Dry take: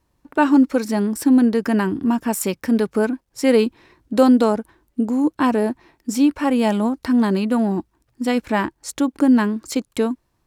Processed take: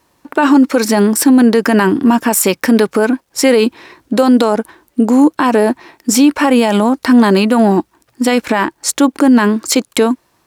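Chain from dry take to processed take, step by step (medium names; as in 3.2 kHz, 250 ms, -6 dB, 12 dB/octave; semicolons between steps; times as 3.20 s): high-pass 400 Hz 6 dB/octave; loudness maximiser +16.5 dB; trim -1 dB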